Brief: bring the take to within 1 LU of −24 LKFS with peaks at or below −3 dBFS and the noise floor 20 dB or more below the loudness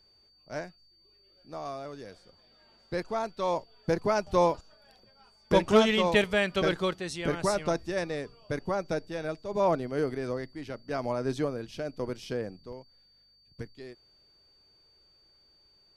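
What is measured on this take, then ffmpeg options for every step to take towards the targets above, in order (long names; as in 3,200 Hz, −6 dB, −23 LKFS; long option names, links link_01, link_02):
interfering tone 4,600 Hz; level of the tone −61 dBFS; integrated loudness −30.0 LKFS; sample peak −10.5 dBFS; target loudness −24.0 LKFS
→ -af "bandreject=frequency=4600:width=30"
-af "volume=6dB"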